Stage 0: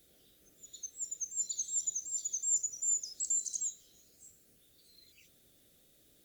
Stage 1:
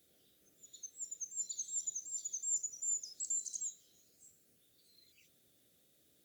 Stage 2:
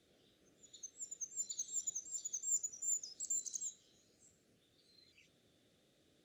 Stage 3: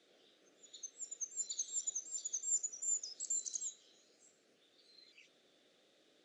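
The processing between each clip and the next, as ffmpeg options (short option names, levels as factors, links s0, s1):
-af "highpass=83,volume=0.562"
-af "adynamicsmooth=sensitivity=5:basefreq=5500,volume=1.5"
-af "highpass=370,lowpass=6600,volume=1.78"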